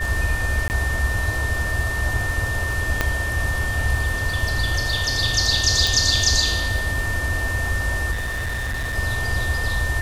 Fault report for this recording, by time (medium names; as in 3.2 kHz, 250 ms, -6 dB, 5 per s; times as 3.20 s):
crackle 16 per s -26 dBFS
whine 1.8 kHz -25 dBFS
0.68–0.70 s: dropout 19 ms
3.01 s: pop -4 dBFS
5.87 s: pop
8.11–8.97 s: clipped -22.5 dBFS